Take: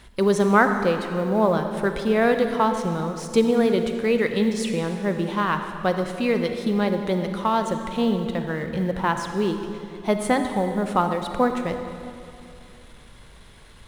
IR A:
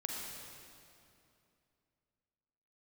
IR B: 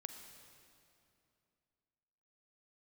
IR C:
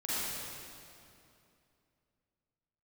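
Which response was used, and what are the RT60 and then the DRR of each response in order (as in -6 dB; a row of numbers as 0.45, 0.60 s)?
B; 2.7, 2.7, 2.7 s; -1.5, 6.0, -11.0 dB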